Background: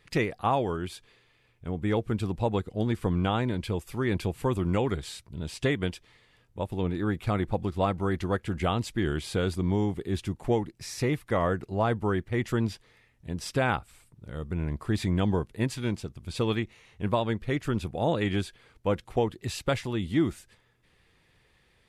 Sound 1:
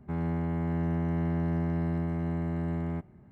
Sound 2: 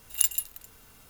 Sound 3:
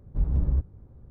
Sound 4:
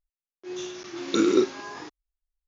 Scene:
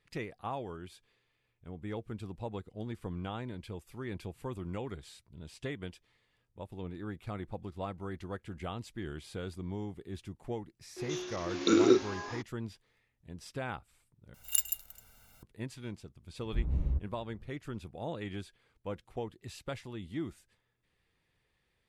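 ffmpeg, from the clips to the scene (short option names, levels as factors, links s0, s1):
-filter_complex "[0:a]volume=0.237[s0];[2:a]aecho=1:1:1.4:0.71[s1];[s0]asplit=2[s2][s3];[s2]atrim=end=14.344[s4];[s1]atrim=end=1.09,asetpts=PTS-STARTPTS,volume=0.376[s5];[s3]atrim=start=15.426[s6];[4:a]atrim=end=2.47,asetpts=PTS-STARTPTS,volume=0.708,afade=t=in:d=0.004:c=hsin,afade=t=out:st=2.466:d=0.004:c=hsin,adelay=10530[s7];[3:a]atrim=end=1.1,asetpts=PTS-STARTPTS,volume=0.447,afade=t=in:d=0.004:c=hsin,afade=t=out:st=1.096:d=0.004:c=hsin,adelay=16380[s8];[s4][s5]acrossfade=d=0.004:c1=hsin:c2=hsin[s9];[s9][s6]acrossfade=d=0.004:c1=hsin:c2=hsin[s10];[s10][s7][s8]amix=inputs=3:normalize=0"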